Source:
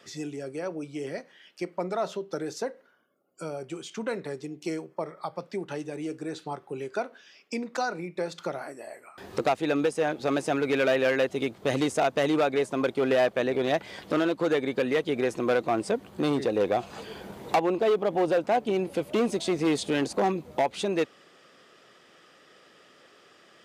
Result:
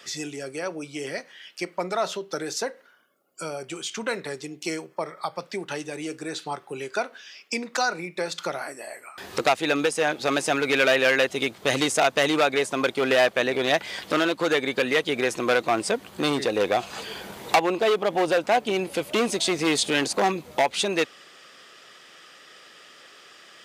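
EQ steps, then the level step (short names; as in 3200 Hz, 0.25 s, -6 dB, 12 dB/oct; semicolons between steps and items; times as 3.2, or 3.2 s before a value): tilt shelf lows -6 dB; +5.0 dB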